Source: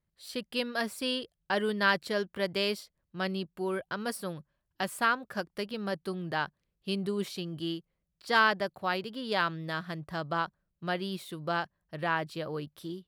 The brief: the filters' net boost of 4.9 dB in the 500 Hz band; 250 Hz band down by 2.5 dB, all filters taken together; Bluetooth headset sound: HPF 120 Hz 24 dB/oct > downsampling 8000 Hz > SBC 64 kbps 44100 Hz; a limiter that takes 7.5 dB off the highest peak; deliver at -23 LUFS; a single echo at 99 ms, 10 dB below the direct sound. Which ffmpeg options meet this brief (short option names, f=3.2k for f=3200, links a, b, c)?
-af "equalizer=f=250:t=o:g=-6.5,equalizer=f=500:t=o:g=8,alimiter=limit=-18dB:level=0:latency=1,highpass=f=120:w=0.5412,highpass=f=120:w=1.3066,aecho=1:1:99:0.316,aresample=8000,aresample=44100,volume=9dB" -ar 44100 -c:a sbc -b:a 64k